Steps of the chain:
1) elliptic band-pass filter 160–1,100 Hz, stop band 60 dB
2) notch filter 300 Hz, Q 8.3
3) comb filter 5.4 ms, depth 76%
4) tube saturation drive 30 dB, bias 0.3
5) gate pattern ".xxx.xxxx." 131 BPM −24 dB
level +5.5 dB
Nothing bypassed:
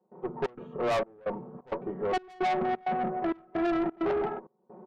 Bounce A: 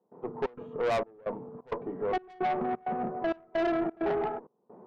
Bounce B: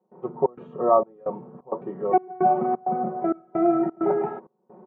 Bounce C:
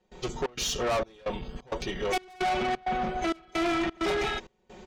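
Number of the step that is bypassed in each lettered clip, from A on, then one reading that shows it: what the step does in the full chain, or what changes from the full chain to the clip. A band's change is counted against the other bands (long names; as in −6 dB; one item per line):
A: 3, 500 Hz band +2.0 dB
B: 4, change in crest factor +10.5 dB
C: 1, 4 kHz band +11.5 dB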